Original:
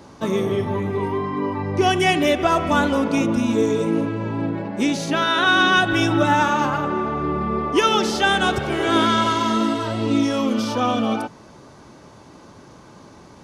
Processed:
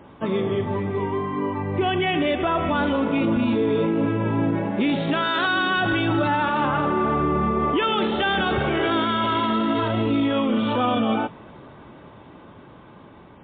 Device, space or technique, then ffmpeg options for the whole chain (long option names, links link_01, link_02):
low-bitrate web radio: -af "dynaudnorm=framelen=940:gausssize=7:maxgain=10dB,alimiter=limit=-12dB:level=0:latency=1:release=19,volume=-1.5dB" -ar 8000 -c:a libmp3lame -b:a 24k